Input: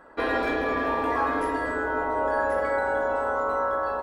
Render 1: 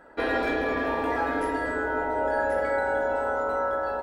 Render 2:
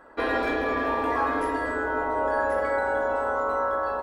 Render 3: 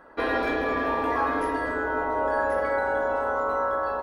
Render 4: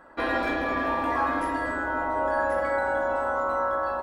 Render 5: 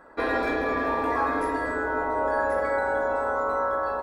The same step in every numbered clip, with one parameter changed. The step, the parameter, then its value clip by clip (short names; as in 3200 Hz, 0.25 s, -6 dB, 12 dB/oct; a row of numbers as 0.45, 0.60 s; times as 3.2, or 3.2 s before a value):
notch, frequency: 1100, 160, 7700, 440, 3000 Hz